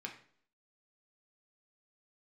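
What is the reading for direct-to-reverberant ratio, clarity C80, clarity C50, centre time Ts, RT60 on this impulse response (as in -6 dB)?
1.0 dB, 13.5 dB, 9.5 dB, 16 ms, 0.55 s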